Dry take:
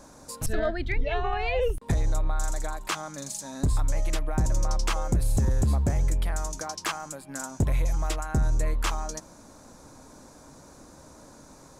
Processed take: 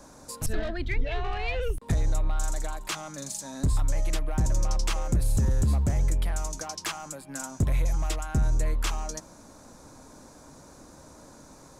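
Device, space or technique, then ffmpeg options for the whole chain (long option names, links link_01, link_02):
one-band saturation: -filter_complex "[0:a]acrossover=split=280|2200[link_01][link_02][link_03];[link_02]asoftclip=type=tanh:threshold=-33dB[link_04];[link_01][link_04][link_03]amix=inputs=3:normalize=0"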